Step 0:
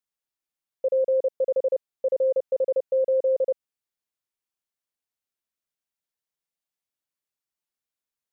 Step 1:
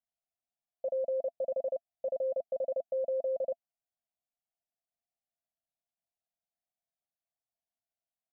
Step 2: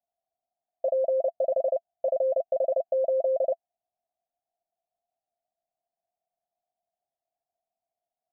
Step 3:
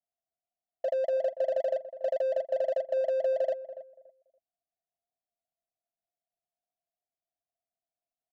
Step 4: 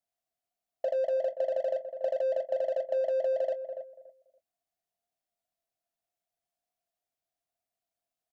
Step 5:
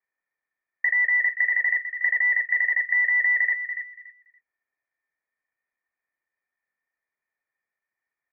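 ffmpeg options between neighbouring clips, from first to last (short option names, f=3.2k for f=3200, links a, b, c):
-af "firequalizer=gain_entry='entry(250,0);entry(380,-24);entry(680,13);entry(980,-11)':delay=0.05:min_phase=1,volume=-4dB"
-af "lowpass=f=710:t=q:w=7"
-filter_complex "[0:a]adynamicsmooth=sensitivity=7.5:basefreq=710,asplit=2[a][b];[b]adelay=285,lowpass=f=810:p=1,volume=-12dB,asplit=2[c][d];[d]adelay=285,lowpass=f=810:p=1,volume=0.25,asplit=2[e][f];[f]adelay=285,lowpass=f=810:p=1,volume=0.25[g];[a][c][e][g]amix=inputs=4:normalize=0,volume=-3.5dB"
-filter_complex "[0:a]acompressor=threshold=-30dB:ratio=6,asplit=2[a][b];[b]adelay=23,volume=-13.5dB[c];[a][c]amix=inputs=2:normalize=0,volume=3dB"
-af "lowpass=f=2.1k:t=q:w=0.5098,lowpass=f=2.1k:t=q:w=0.6013,lowpass=f=2.1k:t=q:w=0.9,lowpass=f=2.1k:t=q:w=2.563,afreqshift=-2500,volume=7dB"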